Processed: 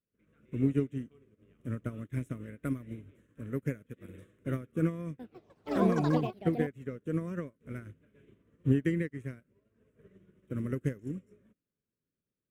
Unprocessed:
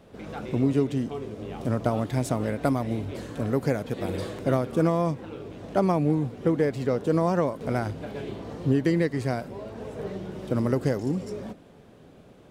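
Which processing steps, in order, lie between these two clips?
band-stop 5 kHz, Q 8.2; dynamic bell 850 Hz, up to -8 dB, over -42 dBFS, Q 1.7; static phaser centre 1.9 kHz, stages 4; 5.04–7.25 s: ever faster or slower copies 153 ms, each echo +7 st, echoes 3; upward expansion 2.5:1, over -46 dBFS

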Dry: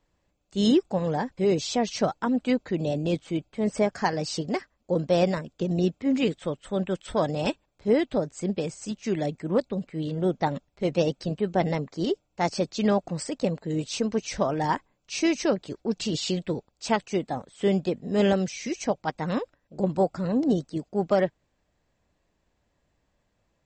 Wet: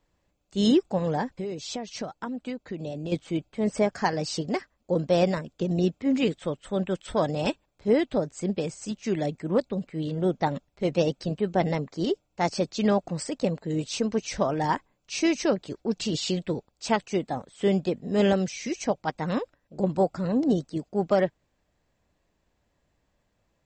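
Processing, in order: 1.28–3.12 s: compression 6:1, threshold -31 dBFS, peak gain reduction 12 dB

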